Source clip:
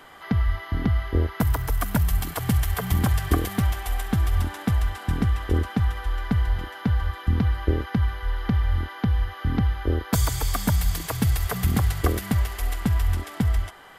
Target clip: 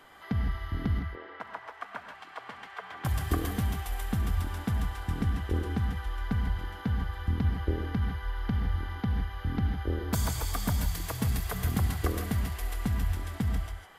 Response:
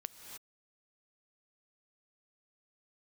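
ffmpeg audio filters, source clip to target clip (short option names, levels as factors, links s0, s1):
-filter_complex "[0:a]asettb=1/sr,asplit=3[s0][s1][s2];[s0]atrim=end=0.994[s3];[s1]atrim=start=0.99:end=3.05,asetpts=PTS-STARTPTS,afade=t=in:d=0.004:c=qsin,afade=t=out:st=2.056:d=0.004:c=qsin,highpass=730,lowpass=2400[s4];[s2]atrim=start=3.046[s5];[s3][s4]acrossfade=d=0.004:c1=hsin:c2=qsin[s6];[s6][s5]acrossfade=d=0.004:c1=qsin:c2=hsin[s7];[1:a]atrim=start_sample=2205,asetrate=83790,aresample=44100[s8];[s7][s8]afir=irnorm=-1:irlink=0,volume=1.33"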